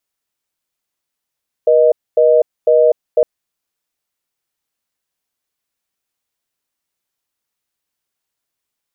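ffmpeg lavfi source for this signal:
-f lavfi -i "aevalsrc='0.316*(sin(2*PI*480*t)+sin(2*PI*620*t))*clip(min(mod(t,0.5),0.25-mod(t,0.5))/0.005,0,1)':d=1.56:s=44100"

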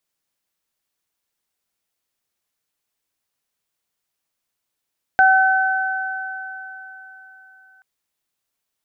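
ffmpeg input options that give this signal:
-f lavfi -i "aevalsrc='0.266*pow(10,-3*t/3.24)*sin(2*PI*761*t)+0.266*pow(10,-3*t/4.08)*sin(2*PI*1522*t)':d=2.63:s=44100"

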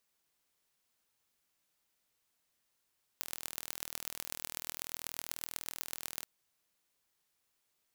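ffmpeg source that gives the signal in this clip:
-f lavfi -i "aevalsrc='0.355*eq(mod(n,1092),0)*(0.5+0.5*eq(mod(n,5460),0))':d=3.04:s=44100"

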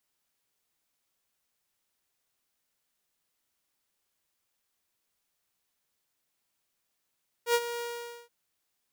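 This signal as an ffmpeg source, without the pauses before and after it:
-f lavfi -i "aevalsrc='0.126*(2*mod(474*t,1)-1)':d=0.827:s=44100,afade=t=in:d=0.084,afade=t=out:st=0.084:d=0.051:silence=0.237,afade=t=out:st=0.34:d=0.487"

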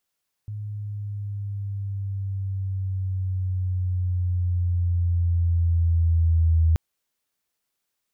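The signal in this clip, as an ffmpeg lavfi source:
-f lavfi -i "aevalsrc='pow(10,(-15+14.5*(t/6.28-1))/20)*sin(2*PI*105*6.28/(-4.5*log(2)/12)*(exp(-4.5*log(2)/12*t/6.28)-1))':d=6.28:s=44100"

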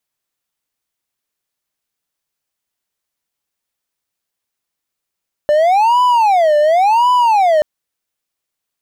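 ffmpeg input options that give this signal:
-f lavfi -i "aevalsrc='0.473*(1-4*abs(mod((794*t-201/(2*PI*0.92)*sin(2*PI*0.92*t))+0.25,1)-0.5))':d=2.13:s=44100"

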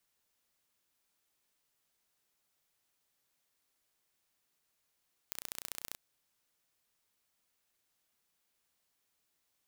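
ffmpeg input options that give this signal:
-f lavfi -i "aevalsrc='0.266*eq(mod(n,1460),0)*(0.5+0.5*eq(mod(n,2920),0))':d=0.64:s=44100"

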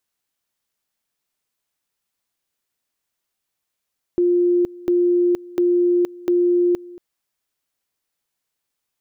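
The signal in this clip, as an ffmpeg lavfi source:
-f lavfi -i "aevalsrc='pow(10,(-13.5-21.5*gte(mod(t,0.7),0.47))/20)*sin(2*PI*352*t)':d=2.8:s=44100"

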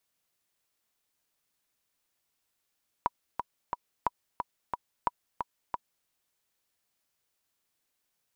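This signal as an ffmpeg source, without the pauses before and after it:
-f lavfi -i "aevalsrc='pow(10,(-12.5-5.5*gte(mod(t,3*60/179),60/179))/20)*sin(2*PI*972*mod(t,60/179))*exp(-6.91*mod(t,60/179)/0.03)':d=3.01:s=44100"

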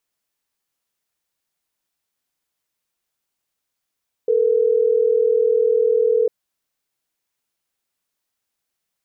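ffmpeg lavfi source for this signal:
-f lavfi -i "aevalsrc='0.15*(sin(2*PI*440*t)+sin(2*PI*480*t))*clip(min(mod(t,6),2-mod(t,6))/0.005,0,1)':d=3.12:s=44100"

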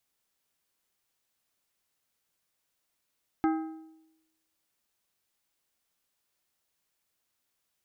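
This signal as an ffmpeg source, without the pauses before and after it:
-f lavfi -i "aevalsrc='0.0841*pow(10,-3*t/0.92)*sin(2*PI*319*t)+0.0422*pow(10,-3*t/0.699)*sin(2*PI*797.5*t)+0.0211*pow(10,-3*t/0.607)*sin(2*PI*1276*t)+0.0106*pow(10,-3*t/0.568)*sin(2*PI*1595*t)+0.00531*pow(10,-3*t/0.525)*sin(2*PI*2073.5*t)':d=1.55:s=44100"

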